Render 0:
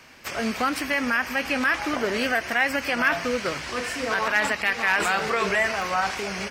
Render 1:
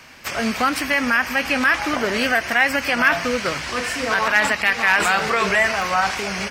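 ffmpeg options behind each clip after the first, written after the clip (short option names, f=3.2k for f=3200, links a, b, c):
-af "equalizer=f=390:w=1.3:g=-3.5,volume=5.5dB"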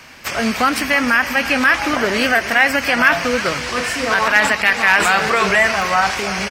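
-af "aecho=1:1:321:0.178,volume=3.5dB"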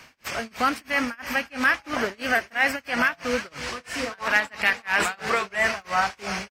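-af "tremolo=f=3:d=0.98,volume=-6dB"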